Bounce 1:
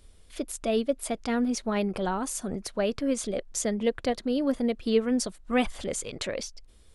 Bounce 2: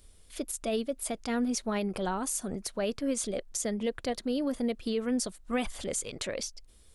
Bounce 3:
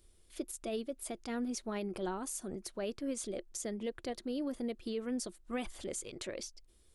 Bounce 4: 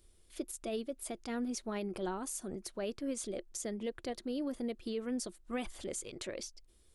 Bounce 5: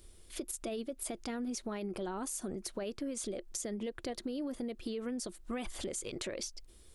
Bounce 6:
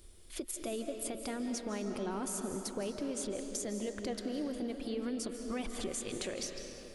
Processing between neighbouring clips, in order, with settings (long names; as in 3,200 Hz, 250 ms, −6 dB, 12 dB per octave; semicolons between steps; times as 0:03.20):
high-shelf EQ 6,100 Hz +9 dB; brickwall limiter −18.5 dBFS, peak gain reduction 8.5 dB; level −3 dB
parametric band 350 Hz +11.5 dB 0.24 octaves; level −8 dB
no processing that can be heard
brickwall limiter −32 dBFS, peak gain reduction 5.5 dB; downward compressor 4 to 1, threshold −44 dBFS, peak gain reduction 8 dB; level +8 dB
comb and all-pass reverb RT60 3.5 s, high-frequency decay 0.65×, pre-delay 120 ms, DRR 4.5 dB